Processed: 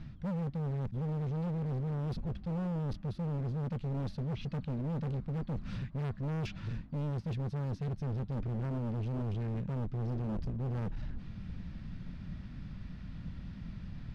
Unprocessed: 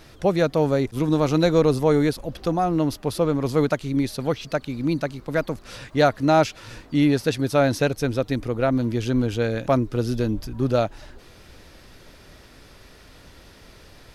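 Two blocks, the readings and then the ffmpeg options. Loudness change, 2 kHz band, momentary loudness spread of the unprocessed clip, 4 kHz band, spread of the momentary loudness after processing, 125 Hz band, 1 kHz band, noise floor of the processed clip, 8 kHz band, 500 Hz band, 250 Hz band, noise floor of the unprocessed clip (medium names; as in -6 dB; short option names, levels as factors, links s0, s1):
-15.0 dB, -22.0 dB, 8 LU, -21.5 dB, 10 LU, -6.5 dB, -21.0 dB, -48 dBFS, under -25 dB, -22.0 dB, -15.0 dB, -49 dBFS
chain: -af "lowpass=3300,lowshelf=f=280:t=q:w=3:g=14,areverse,acompressor=threshold=0.158:ratio=16,areverse,asoftclip=type=hard:threshold=0.0596,volume=0.376"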